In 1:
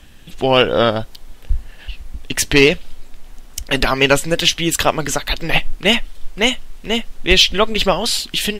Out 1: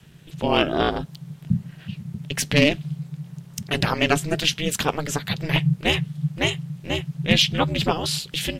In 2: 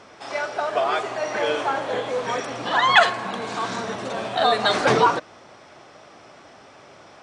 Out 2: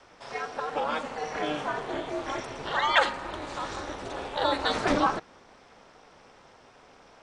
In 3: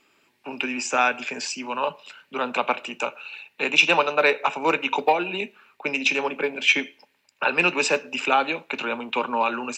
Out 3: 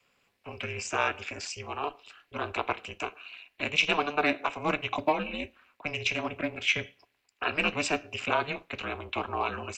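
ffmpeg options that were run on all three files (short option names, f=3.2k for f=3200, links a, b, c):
-af "aeval=exprs='val(0)*sin(2*PI*150*n/s)':c=same,adynamicequalizer=threshold=0.0158:dfrequency=230:dqfactor=2:tfrequency=230:tqfactor=2:attack=5:release=100:ratio=0.375:range=2:mode=boostabove:tftype=bell,volume=-4.5dB"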